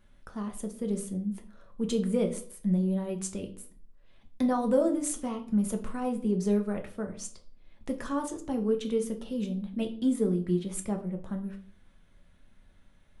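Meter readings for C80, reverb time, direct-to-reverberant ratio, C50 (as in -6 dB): 17.0 dB, 0.50 s, 3.5 dB, 12.0 dB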